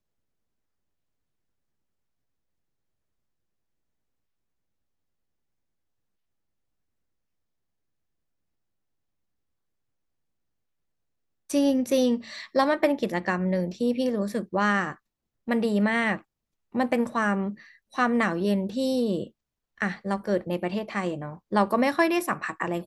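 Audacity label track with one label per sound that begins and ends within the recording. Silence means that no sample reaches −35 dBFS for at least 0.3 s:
11.500000	14.920000	sound
15.480000	16.180000	sound
16.750000	17.530000	sound
17.960000	19.270000	sound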